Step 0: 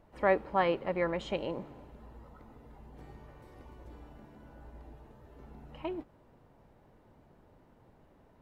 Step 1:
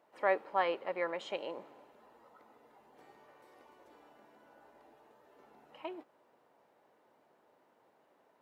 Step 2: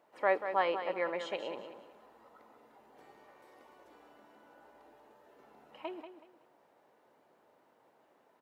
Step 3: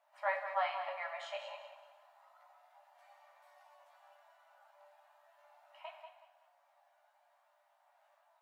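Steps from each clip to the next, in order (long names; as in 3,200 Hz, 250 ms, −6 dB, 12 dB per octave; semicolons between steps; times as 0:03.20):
high-pass filter 460 Hz 12 dB per octave; level −2 dB
repeating echo 187 ms, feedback 27%, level −9.5 dB; level +1 dB
multi-voice chorus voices 2, 0.31 Hz, delay 16 ms, depth 3.7 ms; linear-phase brick-wall high-pass 560 Hz; on a send at −4.5 dB: convolution reverb RT60 1.0 s, pre-delay 4 ms; on the sum: level −1 dB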